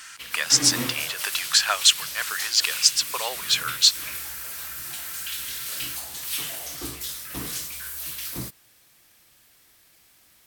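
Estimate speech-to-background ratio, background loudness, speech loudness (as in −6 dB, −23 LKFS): 9.0 dB, −30.0 LKFS, −21.0 LKFS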